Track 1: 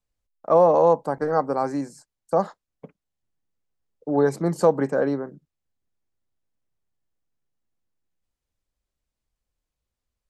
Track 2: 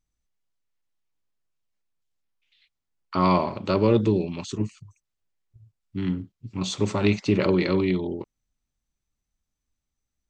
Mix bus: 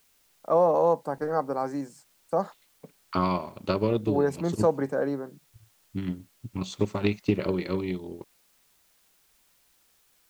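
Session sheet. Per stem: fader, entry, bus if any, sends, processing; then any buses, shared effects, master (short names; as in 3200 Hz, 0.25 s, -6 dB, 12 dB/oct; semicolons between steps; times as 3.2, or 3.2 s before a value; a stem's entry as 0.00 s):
-5.0 dB, 0.00 s, no send, requantised 10-bit, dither triangular
-8.0 dB, 0.00 s, no send, transient shaper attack +8 dB, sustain -6 dB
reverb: off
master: dry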